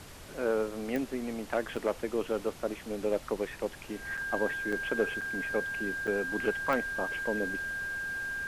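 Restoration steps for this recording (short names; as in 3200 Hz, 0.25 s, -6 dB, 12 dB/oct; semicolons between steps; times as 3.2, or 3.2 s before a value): de-click; notch 1600 Hz, Q 30; interpolate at 1.76/4.17/4.72/5.21/6.07, 5.6 ms; denoiser 30 dB, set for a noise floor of -46 dBFS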